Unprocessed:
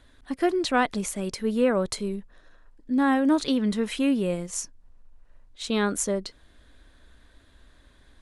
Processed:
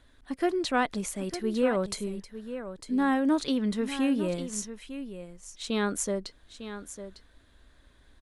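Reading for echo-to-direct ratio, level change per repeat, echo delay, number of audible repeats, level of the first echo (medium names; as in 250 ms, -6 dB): -11.5 dB, no regular repeats, 902 ms, 1, -11.5 dB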